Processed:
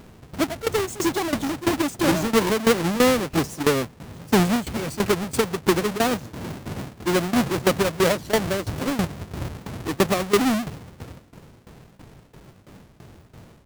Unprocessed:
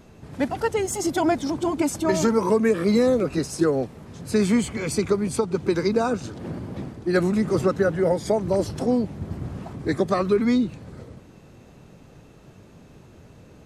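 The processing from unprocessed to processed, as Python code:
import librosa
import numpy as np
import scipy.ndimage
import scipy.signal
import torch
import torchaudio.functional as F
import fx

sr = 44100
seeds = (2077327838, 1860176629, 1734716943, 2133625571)

y = fx.halfwave_hold(x, sr)
y = fx.tremolo_shape(y, sr, shape='saw_down', hz=3.0, depth_pct=85)
y = fx.record_warp(y, sr, rpm=78.0, depth_cents=250.0)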